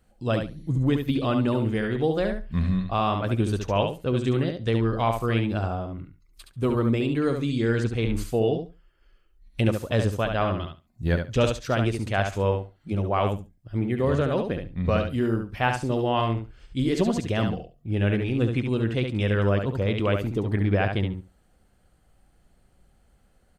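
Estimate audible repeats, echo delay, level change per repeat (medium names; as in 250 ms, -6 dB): 2, 70 ms, -16.0 dB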